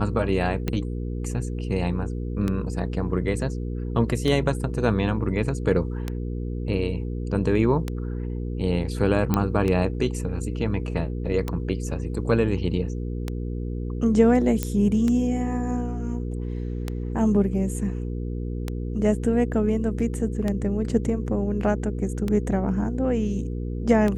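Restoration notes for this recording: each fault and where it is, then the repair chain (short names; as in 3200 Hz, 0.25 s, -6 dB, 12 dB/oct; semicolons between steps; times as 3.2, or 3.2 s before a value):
hum 60 Hz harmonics 8 -29 dBFS
tick 33 1/3 rpm -13 dBFS
9.34 pop -8 dBFS
14.63 pop -10 dBFS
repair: de-click; de-hum 60 Hz, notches 8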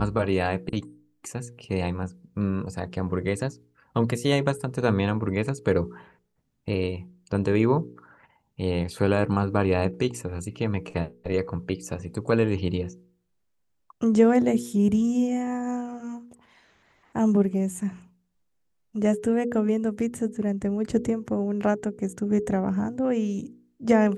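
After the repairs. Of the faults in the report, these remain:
none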